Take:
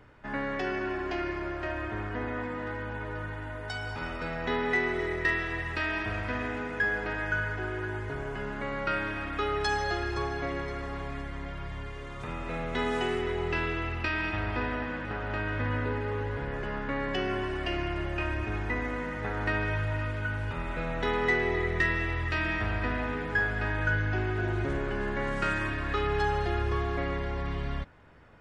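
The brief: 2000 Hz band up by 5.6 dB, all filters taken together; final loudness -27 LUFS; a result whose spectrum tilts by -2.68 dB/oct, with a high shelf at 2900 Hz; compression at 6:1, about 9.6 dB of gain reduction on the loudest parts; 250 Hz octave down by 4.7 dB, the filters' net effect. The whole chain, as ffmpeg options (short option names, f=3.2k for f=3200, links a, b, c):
-af "equalizer=f=250:t=o:g=-7,equalizer=f=2k:t=o:g=4,highshelf=f=2.9k:g=8.5,acompressor=threshold=-28dB:ratio=6,volume=5dB"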